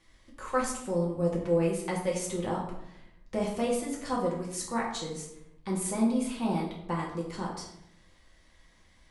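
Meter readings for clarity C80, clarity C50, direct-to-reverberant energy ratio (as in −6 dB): 7.5 dB, 4.5 dB, −4.0 dB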